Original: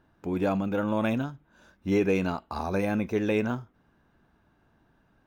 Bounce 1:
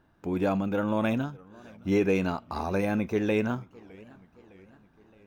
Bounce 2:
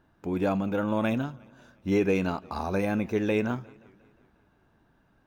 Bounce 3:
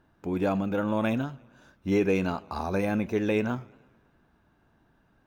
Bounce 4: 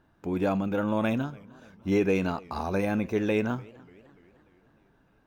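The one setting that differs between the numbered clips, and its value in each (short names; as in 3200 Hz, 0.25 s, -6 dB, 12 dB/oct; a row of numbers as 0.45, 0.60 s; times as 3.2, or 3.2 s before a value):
warbling echo, time: 0.613, 0.177, 0.11, 0.296 s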